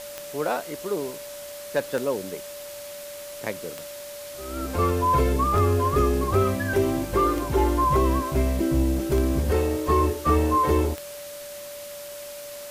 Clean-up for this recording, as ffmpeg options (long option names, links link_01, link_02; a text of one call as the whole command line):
ffmpeg -i in.wav -af "adeclick=threshold=4,bandreject=frequency=580:width=30,afftdn=noise_reduction=30:noise_floor=-38" out.wav